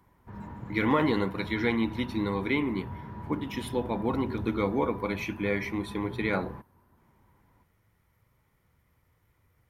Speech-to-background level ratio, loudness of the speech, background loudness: 11.5 dB, −30.0 LKFS, −41.5 LKFS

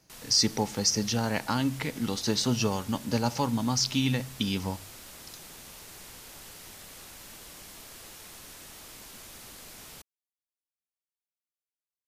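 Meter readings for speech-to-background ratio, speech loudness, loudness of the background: 17.0 dB, −28.0 LKFS, −45.0 LKFS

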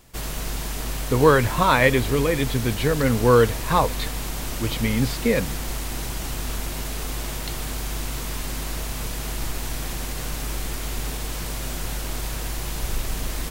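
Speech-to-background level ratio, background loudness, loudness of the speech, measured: 9.0 dB, −30.0 LKFS, −21.0 LKFS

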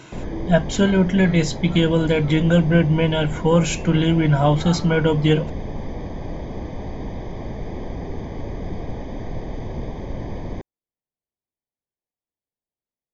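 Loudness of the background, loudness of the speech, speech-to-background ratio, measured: −32.0 LKFS, −18.5 LKFS, 13.5 dB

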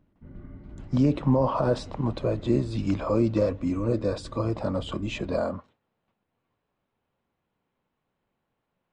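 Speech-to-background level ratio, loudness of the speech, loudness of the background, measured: 18.0 dB, −27.0 LKFS, −45.0 LKFS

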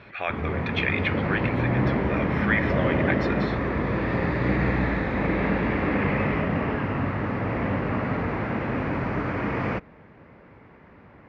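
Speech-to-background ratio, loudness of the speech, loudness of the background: −4.5 dB, −30.0 LKFS, −25.5 LKFS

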